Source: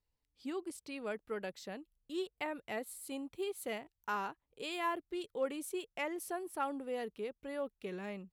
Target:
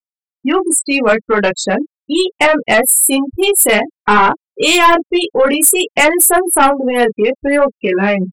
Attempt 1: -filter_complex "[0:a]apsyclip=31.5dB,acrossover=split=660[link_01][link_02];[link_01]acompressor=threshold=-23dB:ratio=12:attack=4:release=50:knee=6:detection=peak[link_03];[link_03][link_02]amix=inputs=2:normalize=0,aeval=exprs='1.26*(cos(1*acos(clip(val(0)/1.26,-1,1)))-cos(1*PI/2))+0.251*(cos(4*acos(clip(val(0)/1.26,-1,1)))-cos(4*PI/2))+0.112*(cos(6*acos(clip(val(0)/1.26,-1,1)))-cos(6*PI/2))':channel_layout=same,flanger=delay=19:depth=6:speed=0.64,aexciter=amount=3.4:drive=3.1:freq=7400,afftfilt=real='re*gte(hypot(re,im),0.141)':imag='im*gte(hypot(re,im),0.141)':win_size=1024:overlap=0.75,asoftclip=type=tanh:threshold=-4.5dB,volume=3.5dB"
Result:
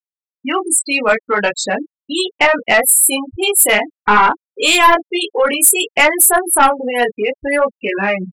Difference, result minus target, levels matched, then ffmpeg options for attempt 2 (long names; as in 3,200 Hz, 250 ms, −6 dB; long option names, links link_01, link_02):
downward compressor: peak gain reduction +9 dB
-filter_complex "[0:a]apsyclip=31.5dB,acrossover=split=660[link_01][link_02];[link_01]acompressor=threshold=-13dB:ratio=12:attack=4:release=50:knee=6:detection=peak[link_03];[link_03][link_02]amix=inputs=2:normalize=0,aeval=exprs='1.26*(cos(1*acos(clip(val(0)/1.26,-1,1)))-cos(1*PI/2))+0.251*(cos(4*acos(clip(val(0)/1.26,-1,1)))-cos(4*PI/2))+0.112*(cos(6*acos(clip(val(0)/1.26,-1,1)))-cos(6*PI/2))':channel_layout=same,flanger=delay=19:depth=6:speed=0.64,aexciter=amount=3.4:drive=3.1:freq=7400,afftfilt=real='re*gte(hypot(re,im),0.141)':imag='im*gte(hypot(re,im),0.141)':win_size=1024:overlap=0.75,asoftclip=type=tanh:threshold=-4.5dB,volume=3.5dB"